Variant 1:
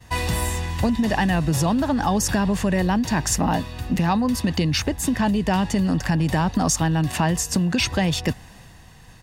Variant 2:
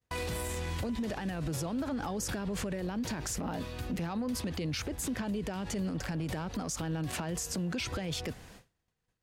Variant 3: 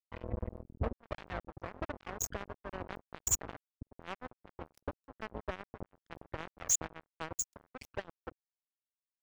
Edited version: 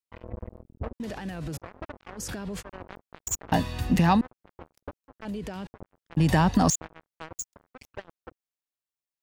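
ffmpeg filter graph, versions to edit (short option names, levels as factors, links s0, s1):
-filter_complex "[1:a]asplit=3[s0][s1][s2];[0:a]asplit=2[s3][s4];[2:a]asplit=6[s5][s6][s7][s8][s9][s10];[s5]atrim=end=1.002[s11];[s0]atrim=start=0.998:end=1.572[s12];[s6]atrim=start=1.568:end=2.2[s13];[s1]atrim=start=2.16:end=2.63[s14];[s7]atrim=start=2.59:end=3.522[s15];[s3]atrim=start=3.518:end=4.212[s16];[s8]atrim=start=4.208:end=5.252[s17];[s2]atrim=start=5.248:end=5.672[s18];[s9]atrim=start=5.668:end=6.172[s19];[s4]atrim=start=6.168:end=6.702[s20];[s10]atrim=start=6.698[s21];[s11][s12]acrossfade=d=0.004:c1=hsin:c2=hsin[s22];[s22][s13]acrossfade=d=0.004:c1=hsin:c2=hsin[s23];[s23][s14]acrossfade=d=0.04:c1=tri:c2=tri[s24];[s24][s15]acrossfade=d=0.04:c1=tri:c2=tri[s25];[s25][s16]acrossfade=d=0.004:c1=hsin:c2=hsin[s26];[s26][s17]acrossfade=d=0.004:c1=hsin:c2=hsin[s27];[s27][s18]acrossfade=d=0.004:c1=hsin:c2=hsin[s28];[s28][s19]acrossfade=d=0.004:c1=hsin:c2=hsin[s29];[s29][s20]acrossfade=d=0.004:c1=hsin:c2=hsin[s30];[s30][s21]acrossfade=d=0.004:c1=hsin:c2=hsin"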